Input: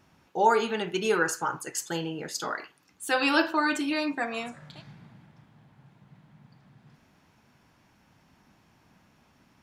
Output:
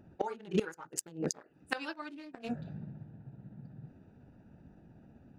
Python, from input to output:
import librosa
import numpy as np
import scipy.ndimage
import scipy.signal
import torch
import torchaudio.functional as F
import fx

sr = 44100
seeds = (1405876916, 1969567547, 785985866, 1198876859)

y = fx.wiener(x, sr, points=41)
y = fx.stretch_grains(y, sr, factor=0.56, grain_ms=126.0)
y = fx.gate_flip(y, sr, shuts_db=-26.0, range_db=-25)
y = F.gain(torch.from_numpy(y), 9.0).numpy()